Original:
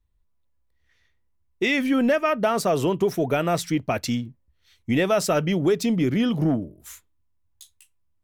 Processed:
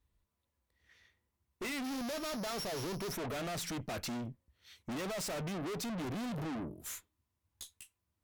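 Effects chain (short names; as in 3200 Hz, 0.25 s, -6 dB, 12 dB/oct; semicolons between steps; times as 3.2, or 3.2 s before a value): 1.84–3.09 sample sorter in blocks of 8 samples; HPF 100 Hz 6 dB/oct; tube stage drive 40 dB, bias 0.35; gain +2.5 dB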